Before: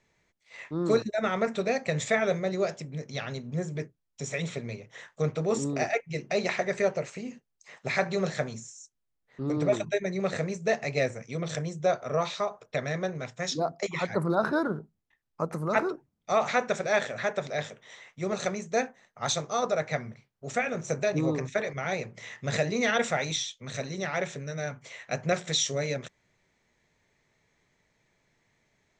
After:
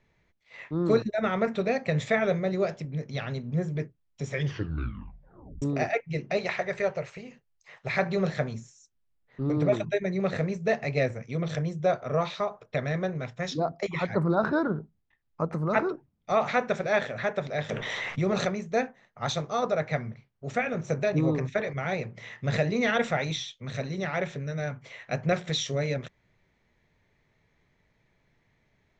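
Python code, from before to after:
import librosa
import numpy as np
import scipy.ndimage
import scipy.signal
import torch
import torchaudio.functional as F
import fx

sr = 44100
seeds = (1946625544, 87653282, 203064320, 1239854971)

y = fx.peak_eq(x, sr, hz=250.0, db=-11.0, octaves=1.1, at=(6.37, 7.94))
y = fx.env_flatten(y, sr, amount_pct=70, at=(17.69, 18.49))
y = fx.edit(y, sr, fx.tape_stop(start_s=4.29, length_s=1.33), tone=tone)
y = scipy.signal.sosfilt(scipy.signal.butter(2, 4100.0, 'lowpass', fs=sr, output='sos'), y)
y = fx.low_shelf(y, sr, hz=150.0, db=8.5)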